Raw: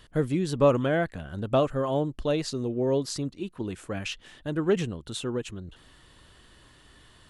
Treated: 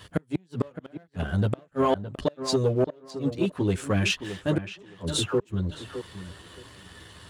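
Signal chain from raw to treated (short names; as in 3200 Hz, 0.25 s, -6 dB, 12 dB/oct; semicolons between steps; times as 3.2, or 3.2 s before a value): chorus voices 6, 0.69 Hz, delay 11 ms, depth 1.3 ms; flipped gate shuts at -22 dBFS, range -36 dB; 4.65–5.4 dispersion lows, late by 0.103 s, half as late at 980 Hz; sample leveller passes 1; HPF 83 Hz; on a send: tape echo 0.617 s, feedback 20%, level -9.5 dB, low-pass 1900 Hz; on the sum: gain +8 dB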